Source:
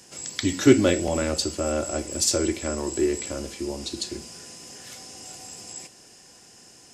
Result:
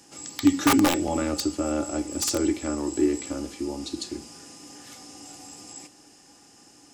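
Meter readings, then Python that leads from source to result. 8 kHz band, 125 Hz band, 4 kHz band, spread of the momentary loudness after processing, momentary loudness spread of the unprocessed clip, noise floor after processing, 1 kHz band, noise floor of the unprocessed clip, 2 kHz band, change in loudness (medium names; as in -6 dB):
-3.5 dB, -5.5 dB, -2.5 dB, 22 LU, 20 LU, -54 dBFS, +5.0 dB, -51 dBFS, -0.5 dB, -1.0 dB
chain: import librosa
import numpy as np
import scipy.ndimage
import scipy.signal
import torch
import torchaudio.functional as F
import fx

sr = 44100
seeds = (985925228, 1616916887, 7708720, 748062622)

y = (np.mod(10.0 ** (12.5 / 20.0) * x + 1.0, 2.0) - 1.0) / 10.0 ** (12.5 / 20.0)
y = fx.small_body(y, sr, hz=(290.0, 830.0, 1200.0), ring_ms=90, db=14)
y = F.gain(torch.from_numpy(y), -4.0).numpy()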